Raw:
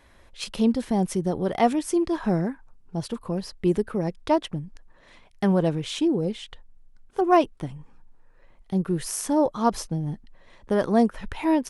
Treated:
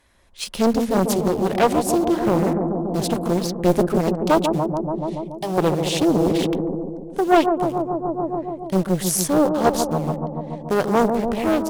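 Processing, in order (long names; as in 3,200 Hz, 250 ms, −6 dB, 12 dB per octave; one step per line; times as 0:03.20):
0:04.15–0:05.58: phaser with its sweep stopped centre 310 Hz, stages 8
in parallel at −9 dB: bit-depth reduction 6 bits, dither none
on the sum: harmonic generator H 4 −25 dB, 7 −32 dB, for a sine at −4 dBFS
high-shelf EQ 4,100 Hz +8.5 dB
on a send: bucket-brigade delay 143 ms, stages 1,024, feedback 78%, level −6 dB
on the sum: automatic gain control gain up to 15 dB
highs frequency-modulated by the lows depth 0.82 ms
level −3.5 dB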